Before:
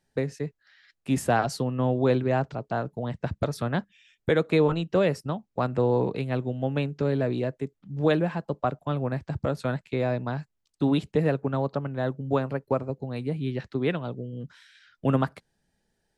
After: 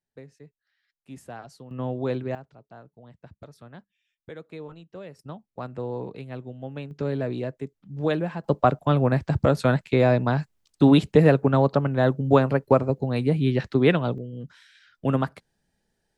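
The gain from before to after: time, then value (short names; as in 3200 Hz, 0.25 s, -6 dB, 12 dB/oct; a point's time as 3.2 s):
-17 dB
from 1.71 s -5 dB
from 2.35 s -18 dB
from 5.19 s -8.5 dB
from 6.91 s -2 dB
from 8.44 s +7.5 dB
from 14.18 s 0 dB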